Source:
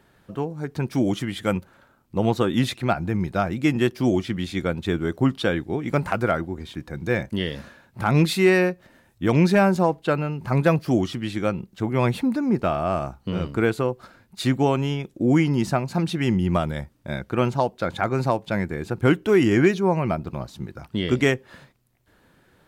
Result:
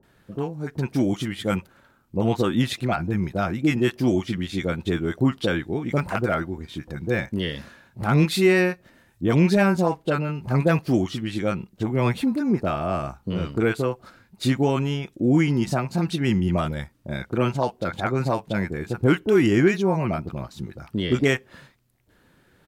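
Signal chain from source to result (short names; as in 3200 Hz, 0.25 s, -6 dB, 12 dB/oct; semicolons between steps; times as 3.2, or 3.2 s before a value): bands offset in time lows, highs 30 ms, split 780 Hz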